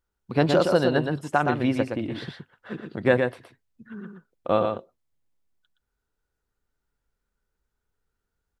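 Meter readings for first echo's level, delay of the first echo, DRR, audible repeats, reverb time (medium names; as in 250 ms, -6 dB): -5.0 dB, 119 ms, no reverb, 1, no reverb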